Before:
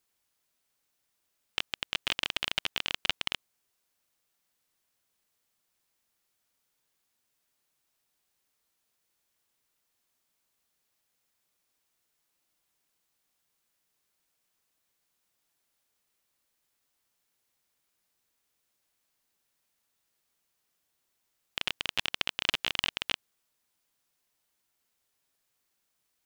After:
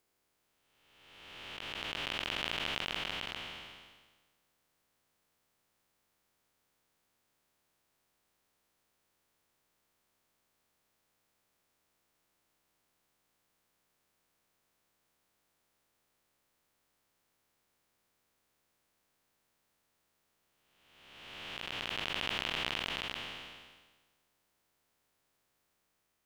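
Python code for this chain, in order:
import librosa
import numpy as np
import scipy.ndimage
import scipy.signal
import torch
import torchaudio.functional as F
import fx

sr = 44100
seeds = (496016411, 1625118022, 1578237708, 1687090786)

y = fx.spec_blur(x, sr, span_ms=823.0)
y = fx.high_shelf(y, sr, hz=2300.0, db=-9.5)
y = y * librosa.db_to_amplitude(8.5)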